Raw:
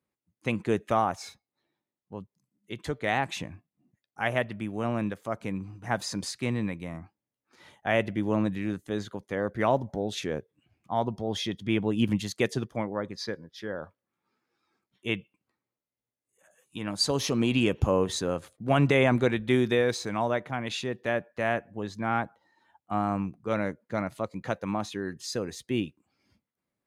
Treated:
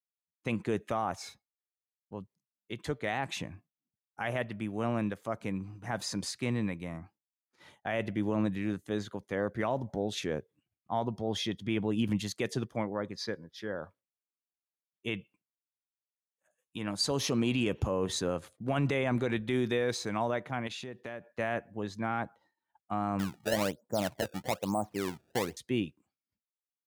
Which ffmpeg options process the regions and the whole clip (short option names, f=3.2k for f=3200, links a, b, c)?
-filter_complex "[0:a]asettb=1/sr,asplit=3[a][b][c];[a]atrim=end=20.674[d];[b]atrim=start=20.67:end=21.28,asetpts=PTS-STARTPTS,afade=t=in:d=0.004:c=qsin,afade=t=out:st=0.606:d=0.004:c=qsin,agate=range=-33dB:threshold=-55dB:ratio=3:release=100:detection=peak,acompressor=threshold=-36dB:ratio=5:attack=3.2:release=140:knee=1:detection=peak[e];[c]atrim=start=21.276[f];[d][e]acrossfade=d=0.004:c1=hsin:c2=qsin[g];[g][f]acrossfade=d=0.004:c1=qsin:c2=hsin,asettb=1/sr,asplit=3[h][i][j];[h]atrim=end=23.194[k];[i]atrim=start=23.19:end=25.57,asetpts=PTS-STARTPTS,afade=t=in:d=0.004:c=qsin,afade=t=out:st=2.376:d=0.004:c=qsin,lowpass=f=770:t=q:w=2,acrusher=samples=24:mix=1:aa=0.000001:lfo=1:lforange=38.4:lforate=1.1[l];[j]atrim=start=25.566[m];[k][l]acrossfade=d=0.004:c1=hsin:c2=qsin[n];[n][m]acrossfade=d=0.004:c1=qsin:c2=hsin,highpass=52,agate=range=-33dB:threshold=-53dB:ratio=3:detection=peak,alimiter=limit=-18dB:level=0:latency=1:release=26,volume=-2dB"